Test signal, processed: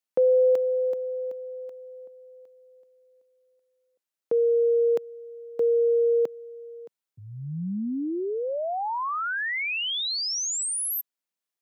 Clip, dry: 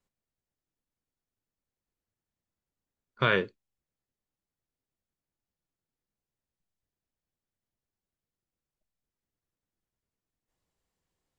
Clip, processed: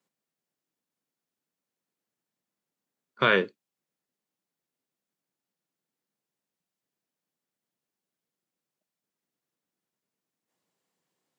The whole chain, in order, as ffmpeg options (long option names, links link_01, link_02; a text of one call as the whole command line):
ffmpeg -i in.wav -af "highpass=frequency=160:width=0.5412,highpass=frequency=160:width=1.3066,volume=3.5dB" out.wav